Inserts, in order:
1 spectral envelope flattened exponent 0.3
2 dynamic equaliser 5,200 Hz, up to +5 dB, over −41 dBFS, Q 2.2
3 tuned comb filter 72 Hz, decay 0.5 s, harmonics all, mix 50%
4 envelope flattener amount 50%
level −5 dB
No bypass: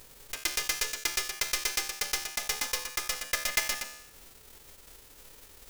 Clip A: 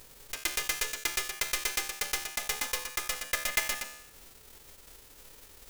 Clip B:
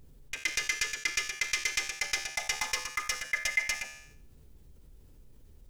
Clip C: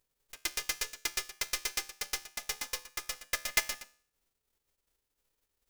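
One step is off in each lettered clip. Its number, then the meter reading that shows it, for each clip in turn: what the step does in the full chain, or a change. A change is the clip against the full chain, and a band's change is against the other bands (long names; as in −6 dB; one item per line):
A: 2, change in integrated loudness −1.0 LU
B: 1, 2 kHz band +6.0 dB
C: 4, change in crest factor +4.5 dB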